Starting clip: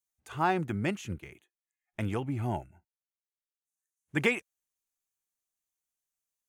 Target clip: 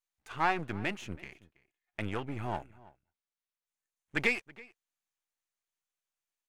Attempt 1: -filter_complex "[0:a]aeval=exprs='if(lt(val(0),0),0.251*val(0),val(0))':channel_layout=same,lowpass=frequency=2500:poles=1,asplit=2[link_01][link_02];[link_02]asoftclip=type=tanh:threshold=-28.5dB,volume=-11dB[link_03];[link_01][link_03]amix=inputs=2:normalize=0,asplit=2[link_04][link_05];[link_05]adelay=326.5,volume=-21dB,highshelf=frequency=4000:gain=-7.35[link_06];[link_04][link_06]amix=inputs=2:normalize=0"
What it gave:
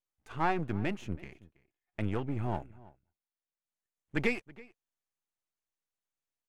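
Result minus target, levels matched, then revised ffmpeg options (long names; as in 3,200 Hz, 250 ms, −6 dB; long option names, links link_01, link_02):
500 Hz band +2.5 dB
-filter_complex "[0:a]aeval=exprs='if(lt(val(0),0),0.251*val(0),val(0))':channel_layout=same,lowpass=frequency=2500:poles=1,tiltshelf=frequency=690:gain=-5.5,asplit=2[link_01][link_02];[link_02]asoftclip=type=tanh:threshold=-28.5dB,volume=-11dB[link_03];[link_01][link_03]amix=inputs=2:normalize=0,asplit=2[link_04][link_05];[link_05]adelay=326.5,volume=-21dB,highshelf=frequency=4000:gain=-7.35[link_06];[link_04][link_06]amix=inputs=2:normalize=0"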